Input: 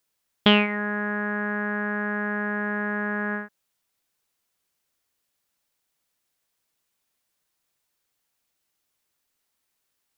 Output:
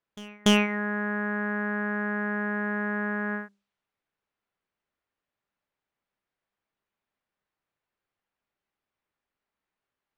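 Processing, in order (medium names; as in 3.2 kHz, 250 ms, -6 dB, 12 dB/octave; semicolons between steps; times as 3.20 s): level-controlled noise filter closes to 2.1 kHz, open at -25.5 dBFS; wavefolder -8.5 dBFS; feedback comb 200 Hz, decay 0.32 s, harmonics all, mix 50%; reverse echo 289 ms -22.5 dB; trim +2.5 dB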